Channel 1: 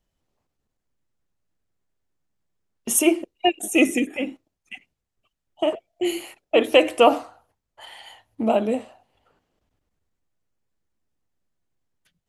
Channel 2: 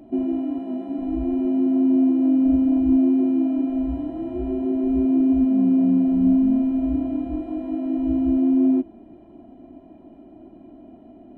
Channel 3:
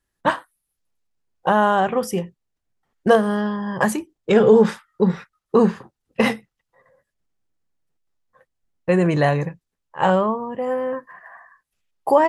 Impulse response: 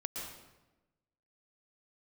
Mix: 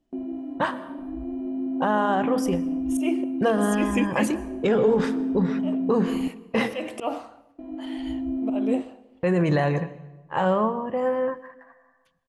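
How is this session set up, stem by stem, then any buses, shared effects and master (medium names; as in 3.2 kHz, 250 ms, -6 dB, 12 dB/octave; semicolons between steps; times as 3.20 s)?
-2.5 dB, 0.00 s, no bus, send -18.5 dB, slow attack 241 ms
-9.5 dB, 0.00 s, muted 6.28–7.58 s, bus A, send -21.5 dB, none
-2.0 dB, 0.35 s, bus A, send -15.5 dB, none
bus A: 0.0 dB, gate -42 dBFS, range -29 dB; peak limiter -15.5 dBFS, peak gain reduction 10 dB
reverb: on, RT60 1.1 s, pre-delay 108 ms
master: treble shelf 9.9 kHz -11.5 dB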